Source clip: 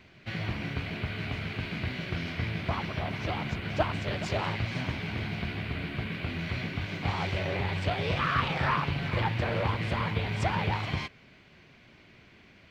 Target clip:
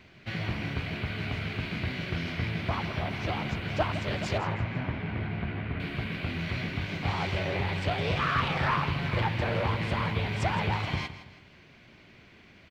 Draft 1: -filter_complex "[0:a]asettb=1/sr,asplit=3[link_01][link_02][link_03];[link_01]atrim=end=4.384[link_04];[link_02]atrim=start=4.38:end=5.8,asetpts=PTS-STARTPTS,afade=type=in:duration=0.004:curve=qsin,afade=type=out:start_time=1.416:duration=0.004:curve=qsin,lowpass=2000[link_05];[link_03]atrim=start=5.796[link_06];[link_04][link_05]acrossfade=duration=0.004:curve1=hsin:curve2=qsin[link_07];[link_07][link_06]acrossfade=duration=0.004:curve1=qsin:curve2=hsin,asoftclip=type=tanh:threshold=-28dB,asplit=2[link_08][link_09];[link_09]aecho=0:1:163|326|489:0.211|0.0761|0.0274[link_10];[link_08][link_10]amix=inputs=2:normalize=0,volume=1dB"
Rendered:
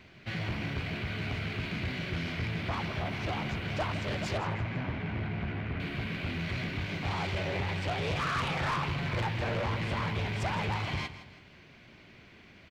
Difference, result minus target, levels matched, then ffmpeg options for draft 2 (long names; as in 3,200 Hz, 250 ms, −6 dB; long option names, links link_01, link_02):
soft clipping: distortion +14 dB
-filter_complex "[0:a]asettb=1/sr,asplit=3[link_01][link_02][link_03];[link_01]atrim=end=4.384[link_04];[link_02]atrim=start=4.38:end=5.8,asetpts=PTS-STARTPTS,afade=type=in:duration=0.004:curve=qsin,afade=type=out:start_time=1.416:duration=0.004:curve=qsin,lowpass=2000[link_05];[link_03]atrim=start=5.796[link_06];[link_04][link_05]acrossfade=duration=0.004:curve1=hsin:curve2=qsin[link_07];[link_07][link_06]acrossfade=duration=0.004:curve1=qsin:curve2=hsin,asoftclip=type=tanh:threshold=-16.5dB,asplit=2[link_08][link_09];[link_09]aecho=0:1:163|326|489:0.211|0.0761|0.0274[link_10];[link_08][link_10]amix=inputs=2:normalize=0,volume=1dB"